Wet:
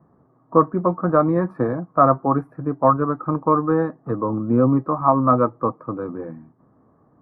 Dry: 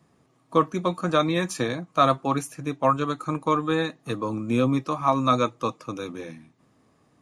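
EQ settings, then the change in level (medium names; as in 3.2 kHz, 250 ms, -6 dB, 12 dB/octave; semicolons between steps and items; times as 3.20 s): inverse Chebyshev low-pass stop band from 2.7 kHz, stop band 40 dB; +5.5 dB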